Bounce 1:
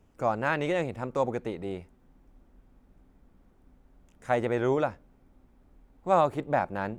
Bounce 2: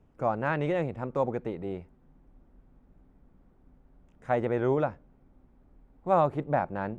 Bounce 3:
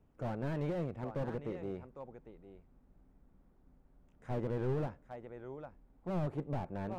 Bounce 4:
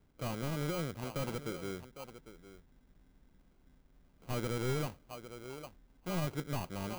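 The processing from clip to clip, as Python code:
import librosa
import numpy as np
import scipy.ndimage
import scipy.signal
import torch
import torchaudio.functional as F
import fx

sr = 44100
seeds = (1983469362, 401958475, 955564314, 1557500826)

y1 = fx.lowpass(x, sr, hz=1600.0, slope=6)
y1 = fx.peak_eq(y1, sr, hz=150.0, db=5.0, octaves=0.26)
y2 = y1 + 10.0 ** (-14.5 / 20.0) * np.pad(y1, (int(804 * sr / 1000.0), 0))[:len(y1)]
y2 = fx.slew_limit(y2, sr, full_power_hz=18.0)
y2 = y2 * 10.0 ** (-6.0 / 20.0)
y3 = fx.sample_hold(y2, sr, seeds[0], rate_hz=1800.0, jitter_pct=0)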